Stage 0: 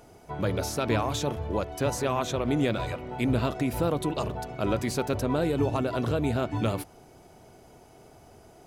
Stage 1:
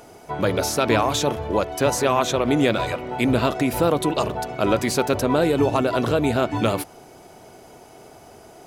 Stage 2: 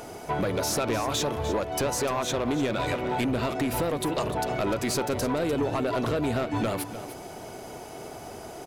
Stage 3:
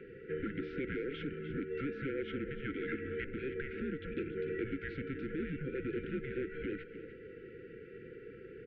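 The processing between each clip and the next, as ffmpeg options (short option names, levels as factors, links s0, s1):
-af "lowshelf=f=160:g=-10.5,volume=2.82"
-af "acompressor=threshold=0.0447:ratio=5,asoftclip=type=tanh:threshold=0.0531,aecho=1:1:299:0.237,volume=1.78"
-filter_complex "[0:a]acrossover=split=590 2200:gain=0.0794 1 0.251[s0][s1][s2];[s0][s1][s2]amix=inputs=3:normalize=0,afftfilt=real='re*(1-between(b*sr/4096,800,1600))':imag='im*(1-between(b*sr/4096,800,1600))':win_size=4096:overlap=0.75,highpass=f=160:t=q:w=0.5412,highpass=f=160:t=q:w=1.307,lowpass=f=3100:t=q:w=0.5176,lowpass=f=3100:t=q:w=0.7071,lowpass=f=3100:t=q:w=1.932,afreqshift=-280,volume=0.794"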